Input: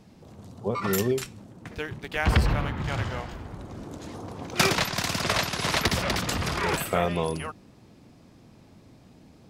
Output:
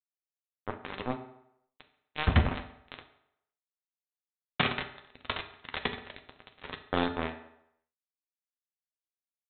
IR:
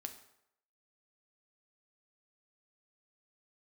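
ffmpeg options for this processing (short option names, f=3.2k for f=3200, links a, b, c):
-filter_complex "[0:a]aresample=8000,acrusher=bits=2:mix=0:aa=0.5,aresample=44100,asplit=2[a][b];[b]adelay=12,volume=-13.5dB[c];[a][c]amix=inputs=2:normalize=0[d];[1:a]atrim=start_sample=2205[e];[d][e]afir=irnorm=-1:irlink=0"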